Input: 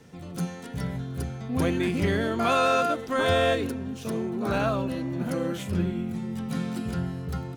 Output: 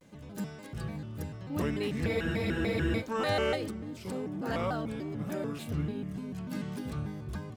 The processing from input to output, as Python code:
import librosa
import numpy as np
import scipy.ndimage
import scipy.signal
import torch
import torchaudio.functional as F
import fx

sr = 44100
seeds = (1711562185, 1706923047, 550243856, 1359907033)

y = fx.spec_freeze(x, sr, seeds[0], at_s=2.1, hold_s=0.9)
y = fx.vibrato_shape(y, sr, shape='square', rate_hz=3.4, depth_cents=250.0)
y = y * 10.0 ** (-6.5 / 20.0)